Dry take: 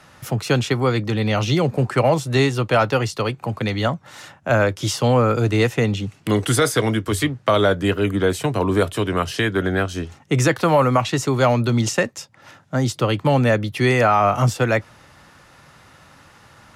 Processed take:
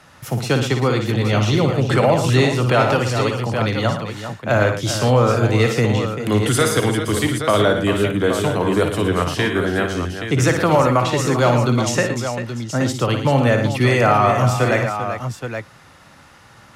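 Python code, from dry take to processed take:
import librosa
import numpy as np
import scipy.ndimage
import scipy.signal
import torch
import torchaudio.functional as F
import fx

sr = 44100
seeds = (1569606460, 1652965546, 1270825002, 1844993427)

y = fx.echo_multitap(x, sr, ms=(57, 114, 393, 824), db=(-7.5, -10.0, -10.5, -8.5))
y = fx.pre_swell(y, sr, db_per_s=50.0, at=(1.9, 3.72))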